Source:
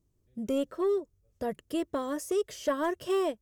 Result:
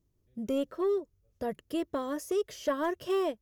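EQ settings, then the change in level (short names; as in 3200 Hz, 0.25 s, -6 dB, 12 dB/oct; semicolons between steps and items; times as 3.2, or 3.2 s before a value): bell 8300 Hz -8 dB 0.3 oct; -1.0 dB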